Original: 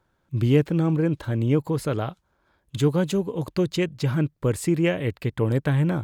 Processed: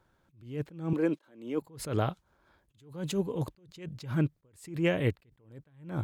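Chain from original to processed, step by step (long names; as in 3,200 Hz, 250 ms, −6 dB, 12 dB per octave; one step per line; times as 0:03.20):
0:00.93–0:01.62: high-pass filter 240 Hz 24 dB per octave
downward compressor, threshold −21 dBFS, peak gain reduction 8 dB
level that may rise only so fast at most 120 dB per second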